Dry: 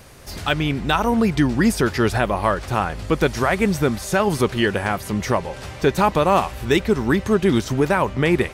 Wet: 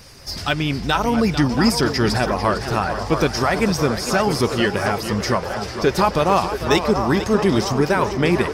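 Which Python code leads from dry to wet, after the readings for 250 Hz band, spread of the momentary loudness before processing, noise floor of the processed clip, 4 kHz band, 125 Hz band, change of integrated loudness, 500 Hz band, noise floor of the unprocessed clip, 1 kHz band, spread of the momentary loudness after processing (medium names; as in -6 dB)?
0.0 dB, 6 LU, -31 dBFS, +4.0 dB, +0.5 dB, +0.5 dB, +0.5 dB, -36 dBFS, +1.0 dB, 5 LU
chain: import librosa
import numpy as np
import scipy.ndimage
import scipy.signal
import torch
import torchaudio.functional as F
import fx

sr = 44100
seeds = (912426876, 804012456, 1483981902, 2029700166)

y = fx.spec_quant(x, sr, step_db=15)
y = fx.peak_eq(y, sr, hz=5100.0, db=14.0, octaves=0.34)
y = fx.echo_wet_bandpass(y, sr, ms=675, feedback_pct=58, hz=810.0, wet_db=-6.5)
y = fx.echo_warbled(y, sr, ms=450, feedback_pct=37, rate_hz=2.8, cents=143, wet_db=-11)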